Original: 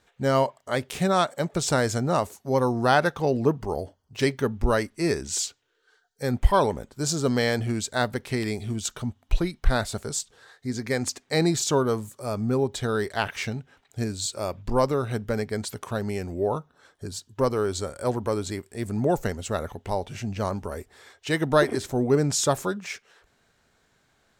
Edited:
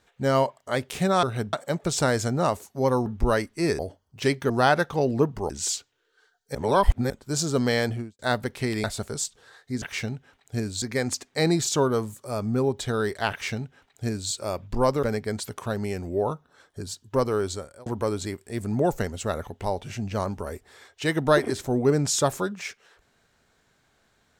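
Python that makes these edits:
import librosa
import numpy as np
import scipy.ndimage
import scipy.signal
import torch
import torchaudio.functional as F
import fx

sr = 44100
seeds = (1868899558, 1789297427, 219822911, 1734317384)

y = fx.studio_fade_out(x, sr, start_s=7.54, length_s=0.35)
y = fx.edit(y, sr, fx.swap(start_s=2.76, length_s=1.0, other_s=4.47, other_length_s=0.73),
    fx.reverse_span(start_s=6.25, length_s=0.55),
    fx.cut(start_s=8.54, length_s=1.25),
    fx.duplicate(start_s=13.26, length_s=1.0, to_s=10.77),
    fx.move(start_s=14.98, length_s=0.3, to_s=1.23),
    fx.fade_out_span(start_s=17.69, length_s=0.42), tone=tone)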